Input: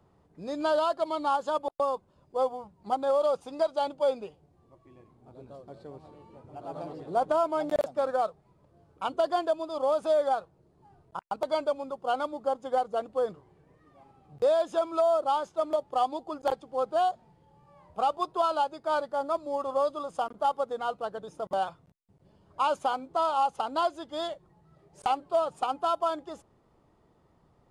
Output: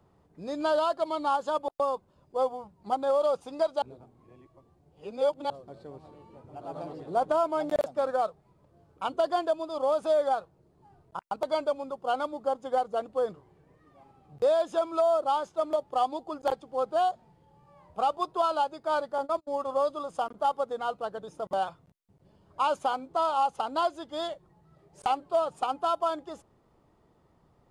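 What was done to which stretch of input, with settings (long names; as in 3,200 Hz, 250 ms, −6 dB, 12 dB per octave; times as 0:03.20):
0:03.82–0:05.50: reverse
0:19.18–0:19.70: noise gate −37 dBFS, range −35 dB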